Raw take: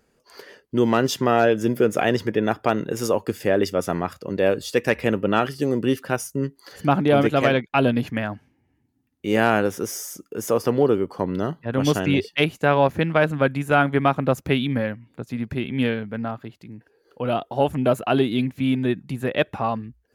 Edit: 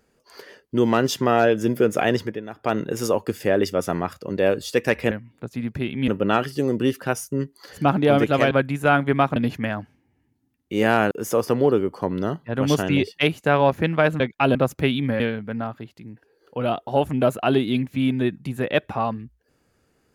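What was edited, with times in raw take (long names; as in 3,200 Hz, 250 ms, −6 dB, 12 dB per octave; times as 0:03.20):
0:02.18–0:02.76: duck −14 dB, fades 0.24 s
0:07.54–0:07.89: swap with 0:13.37–0:14.22
0:09.64–0:10.28: remove
0:14.87–0:15.84: move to 0:05.11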